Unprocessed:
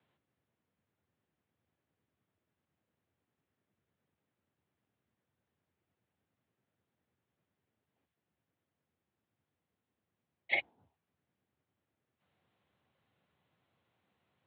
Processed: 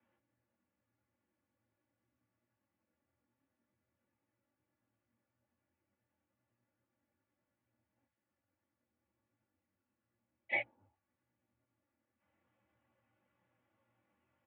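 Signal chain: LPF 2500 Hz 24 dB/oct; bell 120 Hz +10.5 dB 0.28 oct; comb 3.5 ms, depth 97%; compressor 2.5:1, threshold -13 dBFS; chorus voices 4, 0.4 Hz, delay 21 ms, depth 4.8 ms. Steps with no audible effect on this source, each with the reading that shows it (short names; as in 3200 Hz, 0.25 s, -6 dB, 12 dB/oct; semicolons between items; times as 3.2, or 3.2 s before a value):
compressor, threshold -13 dBFS: input peak -17.0 dBFS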